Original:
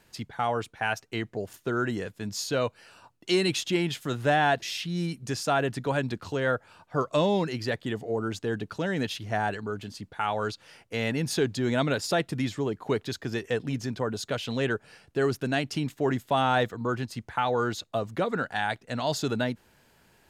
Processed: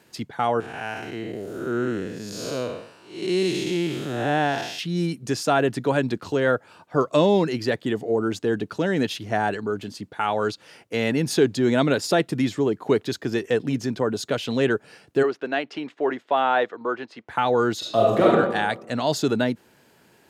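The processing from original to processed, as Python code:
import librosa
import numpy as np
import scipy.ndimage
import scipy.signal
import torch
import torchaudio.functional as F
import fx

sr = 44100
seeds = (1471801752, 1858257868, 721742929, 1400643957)

y = fx.spec_blur(x, sr, span_ms=269.0, at=(0.6, 4.79))
y = fx.bandpass_edges(y, sr, low_hz=460.0, high_hz=2800.0, at=(15.22, 17.28), fade=0.02)
y = fx.reverb_throw(y, sr, start_s=17.78, length_s=0.52, rt60_s=1.1, drr_db=-5.0)
y = scipy.signal.sosfilt(scipy.signal.butter(2, 110.0, 'highpass', fs=sr, output='sos'), y)
y = fx.peak_eq(y, sr, hz=340.0, db=5.0, octaves=1.3)
y = y * 10.0 ** (3.5 / 20.0)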